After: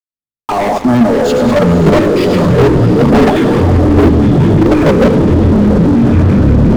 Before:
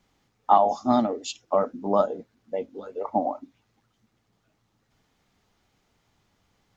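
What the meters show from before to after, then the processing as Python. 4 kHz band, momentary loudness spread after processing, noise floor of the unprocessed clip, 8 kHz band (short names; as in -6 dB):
+18.0 dB, 3 LU, -72 dBFS, n/a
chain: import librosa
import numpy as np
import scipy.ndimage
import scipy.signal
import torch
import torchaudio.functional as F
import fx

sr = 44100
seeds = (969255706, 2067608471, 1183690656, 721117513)

y = fx.fade_in_head(x, sr, length_s=1.02)
y = fx.leveller(y, sr, passes=5)
y = fx.echo_diffused(y, sr, ms=533, feedback_pct=46, wet_db=-8.0)
y = fx.echo_pitch(y, sr, ms=399, semitones=-6, count=3, db_per_echo=-3.0)
y = fx.rider(y, sr, range_db=3, speed_s=2.0)
y = fx.echo_feedback(y, sr, ms=103, feedback_pct=45, wet_db=-10.0)
y = fx.filter_lfo_notch(y, sr, shape='square', hz=5.8, low_hz=670.0, high_hz=2300.0, q=2.3)
y = fx.level_steps(y, sr, step_db=12)
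y = fx.high_shelf(y, sr, hz=2600.0, db=-11.5)
y = fx.notch(y, sr, hz=800.0, q=12.0)
y = fx.leveller(y, sr, passes=5)
y = fx.low_shelf(y, sr, hz=410.0, db=7.5)
y = y * 10.0 ** (-4.5 / 20.0)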